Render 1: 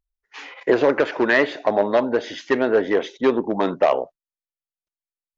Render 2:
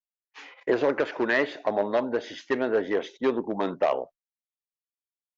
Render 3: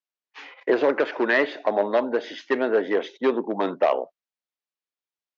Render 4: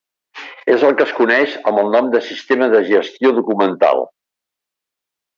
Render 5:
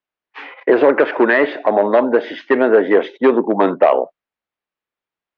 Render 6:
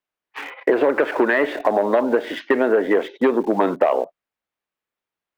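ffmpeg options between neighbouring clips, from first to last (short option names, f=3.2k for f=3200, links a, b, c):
-af "agate=range=-33dB:threshold=-36dB:ratio=3:detection=peak,volume=-6.5dB"
-filter_complex "[0:a]acrossover=split=180 6100:gain=0.0631 1 0.0708[a][b][c];[a][b][c]amix=inputs=3:normalize=0,volume=3.5dB"
-af "alimiter=level_in=11.5dB:limit=-1dB:release=50:level=0:latency=1,volume=-1dB"
-af "lowpass=2.4k"
-filter_complex "[0:a]asplit=2[a][b];[b]aeval=exprs='val(0)*gte(abs(val(0)),0.0422)':c=same,volume=-9.5dB[c];[a][c]amix=inputs=2:normalize=0,acompressor=threshold=-16dB:ratio=3"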